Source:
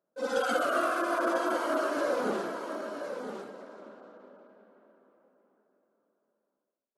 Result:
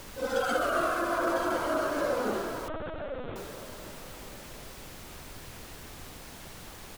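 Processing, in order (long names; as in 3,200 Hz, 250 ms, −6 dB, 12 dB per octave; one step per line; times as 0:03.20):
echo with shifted repeats 287 ms, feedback 34%, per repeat −99 Hz, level −17.5 dB
background noise pink −45 dBFS
0:02.68–0:03.36: linear-prediction vocoder at 8 kHz pitch kept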